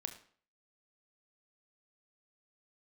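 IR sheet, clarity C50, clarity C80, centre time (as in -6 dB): 11.0 dB, 14.5 dB, 12 ms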